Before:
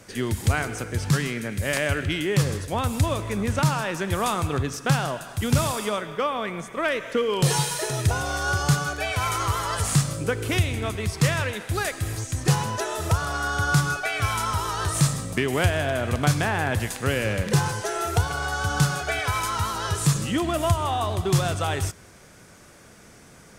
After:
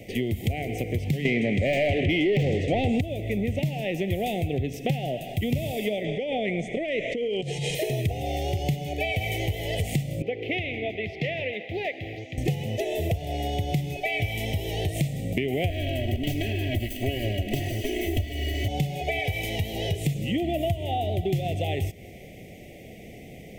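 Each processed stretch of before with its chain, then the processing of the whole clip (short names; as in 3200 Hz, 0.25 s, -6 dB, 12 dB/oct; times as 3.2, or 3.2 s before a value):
1.25–3.01 Chebyshev low-pass 8700 Hz, order 6 + low shelf 380 Hz +10 dB + overdrive pedal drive 27 dB, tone 2800 Hz, clips at -3 dBFS
6.04–7.75 Chebyshev low-pass 7800 Hz, order 3 + high shelf 5800 Hz +4.5 dB + negative-ratio compressor -30 dBFS
10.22–12.38 HPF 740 Hz 6 dB/oct + air absorption 270 m
15.7–18.68 minimum comb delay 0.66 ms + comb 3.1 ms, depth 91%
whole clip: Chebyshev band-stop 750–2000 Hz, order 4; band shelf 6600 Hz -14.5 dB; compressor 4:1, threshold -33 dBFS; gain +8 dB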